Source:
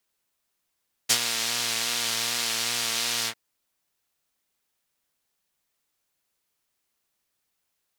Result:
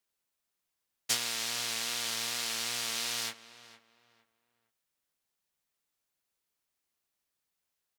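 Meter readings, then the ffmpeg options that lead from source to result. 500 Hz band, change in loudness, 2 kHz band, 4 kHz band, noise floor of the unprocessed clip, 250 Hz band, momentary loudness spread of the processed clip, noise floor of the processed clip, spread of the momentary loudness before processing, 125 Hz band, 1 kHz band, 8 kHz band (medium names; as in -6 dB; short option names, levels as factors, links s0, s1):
-7.0 dB, -7.0 dB, -7.0 dB, -7.0 dB, -78 dBFS, -7.0 dB, 6 LU, -85 dBFS, 4 LU, -7.5 dB, -7.0 dB, -7.0 dB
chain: -filter_complex "[0:a]asplit=2[s0][s1];[s1]adelay=460,lowpass=f=2400:p=1,volume=0.178,asplit=2[s2][s3];[s3]adelay=460,lowpass=f=2400:p=1,volume=0.3,asplit=2[s4][s5];[s5]adelay=460,lowpass=f=2400:p=1,volume=0.3[s6];[s0][s2][s4][s6]amix=inputs=4:normalize=0,volume=0.447"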